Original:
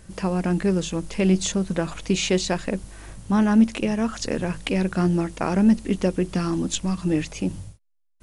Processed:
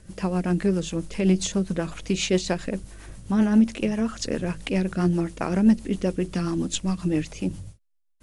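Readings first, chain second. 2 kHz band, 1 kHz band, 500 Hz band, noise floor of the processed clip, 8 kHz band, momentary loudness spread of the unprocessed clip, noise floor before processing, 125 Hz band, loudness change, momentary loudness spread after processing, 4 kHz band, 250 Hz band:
-3.0 dB, -4.0 dB, -2.0 dB, -62 dBFS, -2.5 dB, 10 LU, -61 dBFS, -1.5 dB, -1.5 dB, 10 LU, -2.5 dB, -1.5 dB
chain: rotary speaker horn 7.5 Hz

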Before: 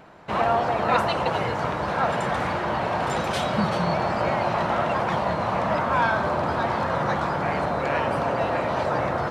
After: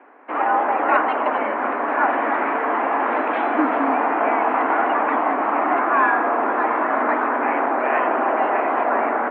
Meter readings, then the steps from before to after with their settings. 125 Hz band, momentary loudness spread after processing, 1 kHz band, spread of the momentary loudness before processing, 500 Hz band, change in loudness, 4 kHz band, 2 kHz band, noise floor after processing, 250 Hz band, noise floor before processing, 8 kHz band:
under -20 dB, 3 LU, +5.5 dB, 3 LU, +2.5 dB, +4.5 dB, n/a, +5.5 dB, -24 dBFS, +3.5 dB, -27 dBFS, under -35 dB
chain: AGC gain up to 5 dB; mistuned SSB +100 Hz 160–2300 Hz

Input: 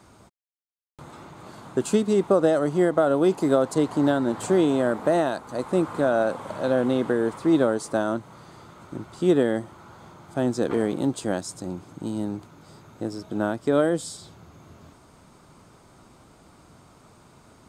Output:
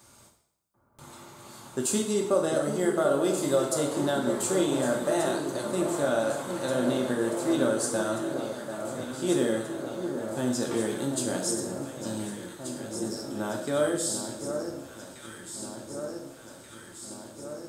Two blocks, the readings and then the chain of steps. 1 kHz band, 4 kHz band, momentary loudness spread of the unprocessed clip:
-4.0 dB, +3.0 dB, 14 LU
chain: pre-emphasis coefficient 0.8; echo with dull and thin repeats by turns 0.741 s, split 1400 Hz, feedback 81%, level -7.5 dB; two-slope reverb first 0.67 s, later 1.9 s, from -21 dB, DRR 0.5 dB; gain +5 dB

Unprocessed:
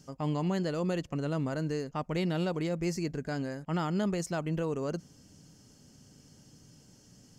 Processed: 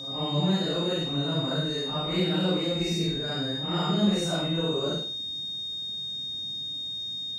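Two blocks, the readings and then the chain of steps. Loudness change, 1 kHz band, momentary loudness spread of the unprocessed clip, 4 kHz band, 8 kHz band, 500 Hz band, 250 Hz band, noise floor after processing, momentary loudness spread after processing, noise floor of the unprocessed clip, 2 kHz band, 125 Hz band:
+5.0 dB, +3.5 dB, 5 LU, +20.5 dB, +4.0 dB, +3.5 dB, +4.5 dB, -34 dBFS, 6 LU, -59 dBFS, +4.0 dB, +4.0 dB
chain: phase scrambler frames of 0.2 s; whine 3700 Hz -39 dBFS; flutter echo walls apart 8.3 m, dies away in 0.4 s; gain +3 dB

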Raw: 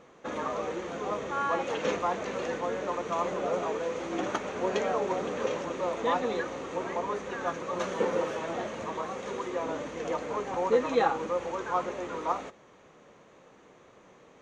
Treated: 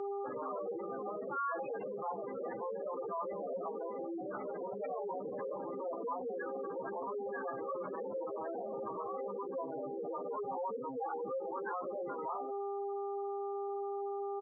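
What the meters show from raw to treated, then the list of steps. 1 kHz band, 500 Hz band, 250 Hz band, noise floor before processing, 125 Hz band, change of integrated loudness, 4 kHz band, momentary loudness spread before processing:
-7.5 dB, -7.0 dB, -9.0 dB, -57 dBFS, -13.5 dB, -8.5 dB, under -40 dB, 7 LU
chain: octaver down 1 oct, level -5 dB; buzz 400 Hz, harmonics 12, -44 dBFS -7 dB/oct; compressor 6:1, threshold -38 dBFS, peak gain reduction 18.5 dB; early reflections 15 ms -3.5 dB, 49 ms -14 dB, 65 ms -17 dB; spectral gate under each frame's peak -10 dB strong; low shelf 390 Hz +9 dB; limiter -38 dBFS, peak gain reduction 14 dB; weighting filter A; gain +8.5 dB

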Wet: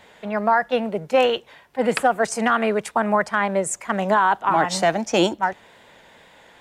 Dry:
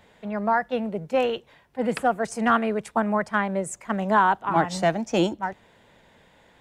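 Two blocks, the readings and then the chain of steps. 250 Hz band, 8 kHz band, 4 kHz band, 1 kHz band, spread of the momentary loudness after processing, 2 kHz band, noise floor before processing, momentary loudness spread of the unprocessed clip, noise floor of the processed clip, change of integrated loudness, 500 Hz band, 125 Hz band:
+1.0 dB, +8.5 dB, +7.5 dB, +3.5 dB, 6 LU, +4.5 dB, -58 dBFS, 9 LU, -51 dBFS, +3.5 dB, +4.5 dB, -0.5 dB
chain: low shelf 300 Hz -10.5 dB; limiter -16.5 dBFS, peak gain reduction 7.5 dB; wow and flutter 26 cents; gain +8.5 dB

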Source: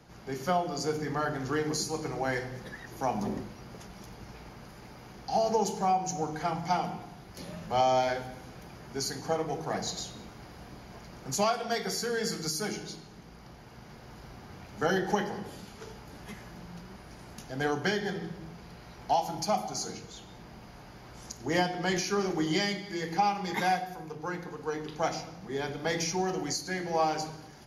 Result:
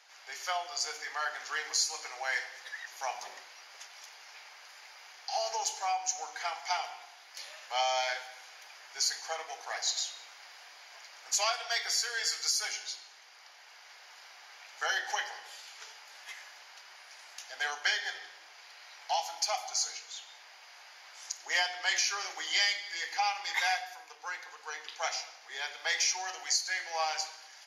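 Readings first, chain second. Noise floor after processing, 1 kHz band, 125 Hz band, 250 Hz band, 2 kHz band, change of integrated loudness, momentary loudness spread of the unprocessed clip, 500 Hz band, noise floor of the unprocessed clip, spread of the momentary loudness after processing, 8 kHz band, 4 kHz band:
-55 dBFS, -5.0 dB, under -40 dB, under -30 dB, +3.0 dB, -1.0 dB, 20 LU, -11.5 dB, -50 dBFS, 21 LU, +4.5 dB, +5.0 dB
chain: HPF 710 Hz 24 dB/oct; band shelf 3600 Hz +8.5 dB 2.5 oct; gain -3.5 dB

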